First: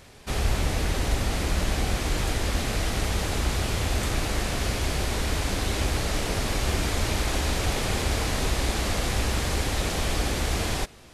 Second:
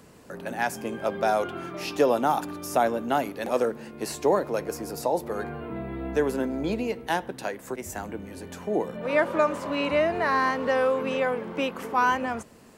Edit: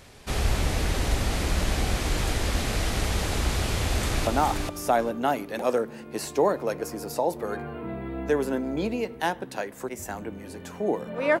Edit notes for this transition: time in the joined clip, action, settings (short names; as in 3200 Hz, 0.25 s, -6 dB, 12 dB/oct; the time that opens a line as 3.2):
first
3.84–4.27 echo throw 0.42 s, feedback 15%, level -4.5 dB
4.27 switch to second from 2.14 s